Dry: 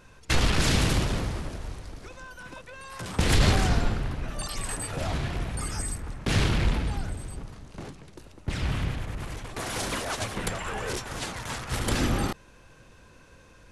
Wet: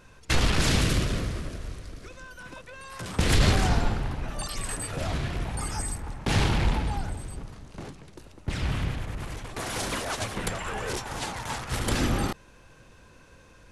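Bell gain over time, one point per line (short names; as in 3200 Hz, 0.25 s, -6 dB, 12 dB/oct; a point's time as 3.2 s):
bell 850 Hz 0.37 oct
-0.5 dB
from 0.81 s -10.5 dB
from 2.38 s -2 dB
from 3.63 s +5.5 dB
from 4.44 s -2.5 dB
from 5.45 s +7.5 dB
from 7.2 s +0.5 dB
from 10.93 s +7 dB
from 11.64 s +0.5 dB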